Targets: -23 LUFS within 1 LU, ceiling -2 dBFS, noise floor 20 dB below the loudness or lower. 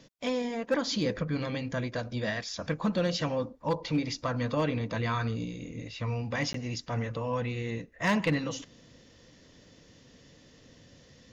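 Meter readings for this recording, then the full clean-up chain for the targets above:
clipped 0.3%; flat tops at -20.0 dBFS; dropouts 1; longest dropout 13 ms; loudness -31.5 LUFS; peak -20.0 dBFS; loudness target -23.0 LUFS
-> clip repair -20 dBFS; interpolate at 6.53, 13 ms; gain +8.5 dB

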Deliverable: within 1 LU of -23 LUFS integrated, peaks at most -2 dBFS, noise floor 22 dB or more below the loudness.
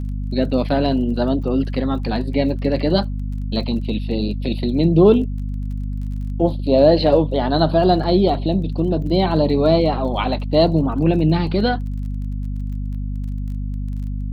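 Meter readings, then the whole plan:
ticks 24/s; hum 50 Hz; harmonics up to 250 Hz; hum level -22 dBFS; loudness -19.5 LUFS; peak -2.0 dBFS; loudness target -23.0 LUFS
-> de-click; de-hum 50 Hz, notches 5; gain -3.5 dB

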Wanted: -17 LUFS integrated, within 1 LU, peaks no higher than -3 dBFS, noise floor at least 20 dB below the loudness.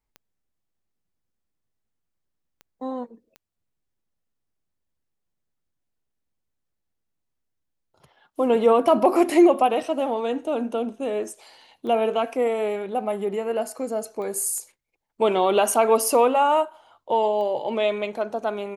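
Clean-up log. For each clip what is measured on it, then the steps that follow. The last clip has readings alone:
clicks 7; loudness -22.5 LUFS; peak -6.5 dBFS; loudness target -17.0 LUFS
-> de-click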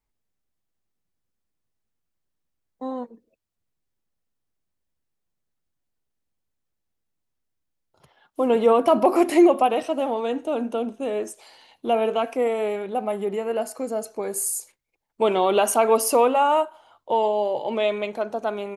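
clicks 0; loudness -22.5 LUFS; peak -6.5 dBFS; loudness target -17.0 LUFS
-> gain +5.5 dB; limiter -3 dBFS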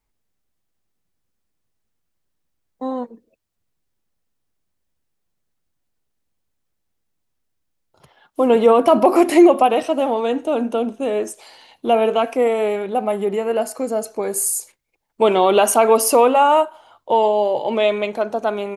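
loudness -17.5 LUFS; peak -3.0 dBFS; noise floor -74 dBFS

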